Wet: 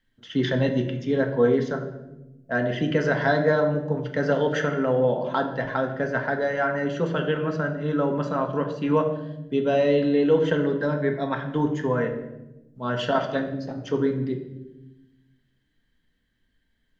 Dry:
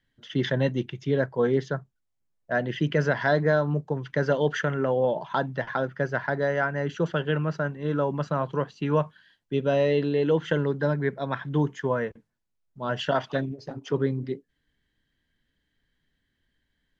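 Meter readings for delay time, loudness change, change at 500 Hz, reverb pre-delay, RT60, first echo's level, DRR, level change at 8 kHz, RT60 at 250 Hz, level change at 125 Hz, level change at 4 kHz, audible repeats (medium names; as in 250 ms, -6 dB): no echo, +2.0 dB, +2.5 dB, 4 ms, 0.95 s, no echo, 3.0 dB, no reading, 1.6 s, -0.5 dB, +1.0 dB, no echo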